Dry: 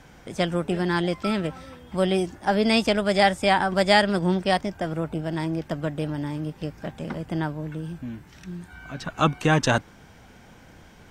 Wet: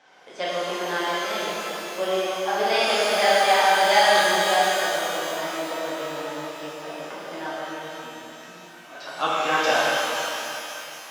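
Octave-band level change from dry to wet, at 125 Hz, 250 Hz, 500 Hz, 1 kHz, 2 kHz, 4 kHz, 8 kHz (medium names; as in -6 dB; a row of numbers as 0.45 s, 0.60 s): -18.5 dB, -10.5 dB, +1.5 dB, +4.5 dB, +4.5 dB, +5.0 dB, +8.5 dB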